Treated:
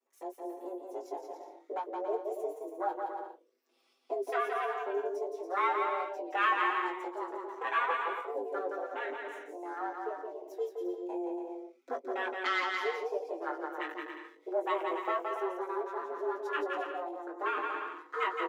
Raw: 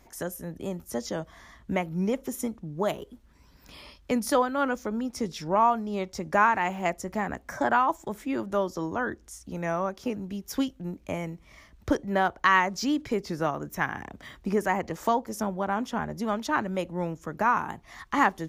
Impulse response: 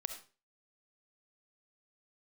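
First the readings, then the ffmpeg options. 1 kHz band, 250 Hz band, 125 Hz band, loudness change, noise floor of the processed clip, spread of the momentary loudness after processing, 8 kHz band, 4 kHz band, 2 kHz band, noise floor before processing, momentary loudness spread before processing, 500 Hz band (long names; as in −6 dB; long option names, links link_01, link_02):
−6.0 dB, −13.5 dB, below −40 dB, −6.5 dB, −67 dBFS, 12 LU, below −20 dB, −6.0 dB, −5.5 dB, −57 dBFS, 14 LU, −4.5 dB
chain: -filter_complex "[0:a]aeval=exprs='if(lt(val(0),0),0.251*val(0),val(0))':channel_layout=same,highpass=frequency=87:width=0.5412,highpass=frequency=87:width=1.3066,afwtdn=0.02,afreqshift=180,asplit=2[link_01][link_02];[link_02]adelay=20,volume=-7dB[link_03];[link_01][link_03]amix=inputs=2:normalize=0,acrossover=split=980[link_04][link_05];[link_04]aeval=exprs='val(0)*(1-0.5/2+0.5/2*cos(2*PI*2.4*n/s))':channel_layout=same[link_06];[link_05]aeval=exprs='val(0)*(1-0.5/2-0.5/2*cos(2*PI*2.4*n/s))':channel_layout=same[link_07];[link_06][link_07]amix=inputs=2:normalize=0,asplit=2[link_08][link_09];[link_09]aecho=0:1:170|280.5|352.3|399|429.4:0.631|0.398|0.251|0.158|0.1[link_10];[link_08][link_10]amix=inputs=2:normalize=0,asplit=2[link_11][link_12];[link_12]adelay=5.6,afreqshift=0.26[link_13];[link_11][link_13]amix=inputs=2:normalize=1"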